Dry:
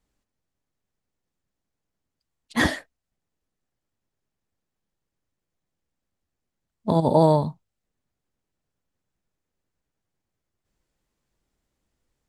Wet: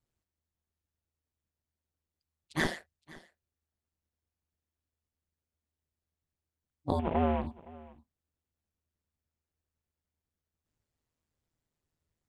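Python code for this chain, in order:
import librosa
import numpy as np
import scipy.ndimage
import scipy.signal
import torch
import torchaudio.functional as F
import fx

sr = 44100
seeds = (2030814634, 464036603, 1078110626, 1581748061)

y = fx.cvsd(x, sr, bps=16000, at=(6.99, 7.47))
y = y * np.sin(2.0 * np.pi * 79.0 * np.arange(len(y)) / sr)
y = y + 10.0 ** (-21.5 / 20.0) * np.pad(y, (int(516 * sr / 1000.0), 0))[:len(y)]
y = F.gain(torch.from_numpy(y), -6.0).numpy()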